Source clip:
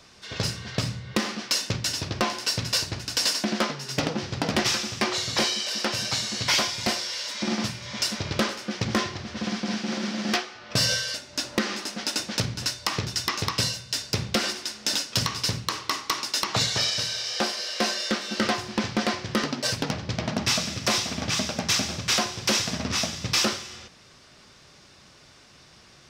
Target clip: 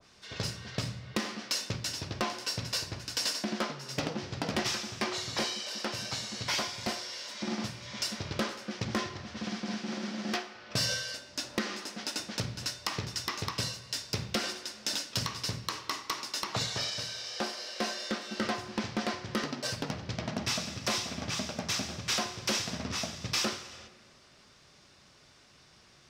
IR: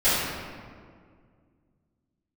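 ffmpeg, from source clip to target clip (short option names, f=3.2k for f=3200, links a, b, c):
-filter_complex "[0:a]asplit=2[a][b];[b]highpass=410[c];[1:a]atrim=start_sample=2205[d];[c][d]afir=irnorm=-1:irlink=0,volume=-29.5dB[e];[a][e]amix=inputs=2:normalize=0,adynamicequalizer=threshold=0.0141:dfrequency=1600:dqfactor=0.7:tfrequency=1600:tqfactor=0.7:attack=5:release=100:ratio=0.375:range=1.5:mode=cutabove:tftype=highshelf,volume=-7dB"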